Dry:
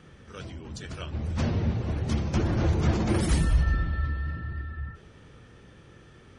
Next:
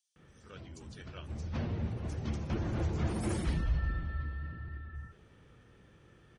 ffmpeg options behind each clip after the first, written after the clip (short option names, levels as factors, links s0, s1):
-filter_complex "[0:a]acrossover=split=5100[s0][s1];[s0]adelay=160[s2];[s2][s1]amix=inputs=2:normalize=0,volume=0.376"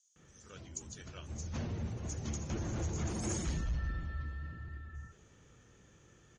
-af "asoftclip=type=tanh:threshold=0.0562,lowpass=f=6700:t=q:w=14,volume=0.75"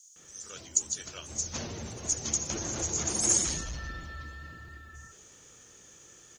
-af "bass=f=250:g=-10,treble=f=4000:g=14,volume=1.88"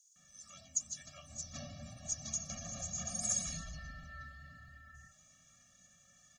-af "flanger=delay=5.6:depth=1.3:regen=58:speed=0.33:shape=sinusoidal,afftfilt=real='re*eq(mod(floor(b*sr/1024/270),2),0)':imag='im*eq(mod(floor(b*sr/1024/270),2),0)':win_size=1024:overlap=0.75,volume=0.708"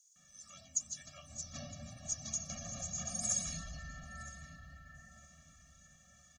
-filter_complex "[0:a]asplit=2[s0][s1];[s1]adelay=962,lowpass=f=2600:p=1,volume=0.251,asplit=2[s2][s3];[s3]adelay=962,lowpass=f=2600:p=1,volume=0.41,asplit=2[s4][s5];[s5]adelay=962,lowpass=f=2600:p=1,volume=0.41,asplit=2[s6][s7];[s7]adelay=962,lowpass=f=2600:p=1,volume=0.41[s8];[s0][s2][s4][s6][s8]amix=inputs=5:normalize=0"